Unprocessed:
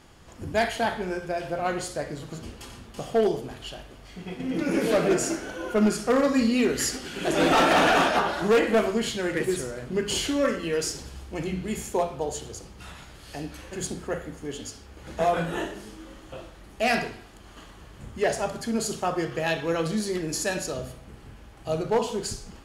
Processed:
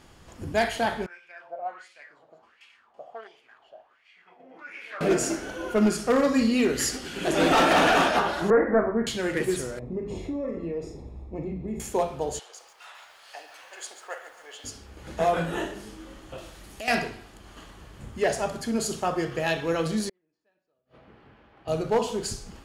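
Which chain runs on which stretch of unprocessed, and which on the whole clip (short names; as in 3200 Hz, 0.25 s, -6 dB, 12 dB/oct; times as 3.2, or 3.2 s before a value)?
1.06–5.01 low shelf 460 Hz -8 dB + wah 1.4 Hz 620–2500 Hz, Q 4.4
8.5–9.07 steep low-pass 1900 Hz 72 dB/oct + doubler 35 ms -13 dB
9.79–11.8 running mean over 29 samples + compressor 3:1, threshold -28 dBFS + doubler 41 ms -9 dB
12.39–14.64 HPF 660 Hz 24 dB/oct + high shelf 6500 Hz -11 dB + lo-fi delay 0.141 s, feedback 55%, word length 9-bit, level -11 dB
16.38–16.88 compressor 3:1, threshold -39 dBFS + high shelf 3100 Hz +10 dB
20.09–21.68 HPF 390 Hz 6 dB/oct + flipped gate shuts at -27 dBFS, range -41 dB + air absorption 340 m
whole clip: dry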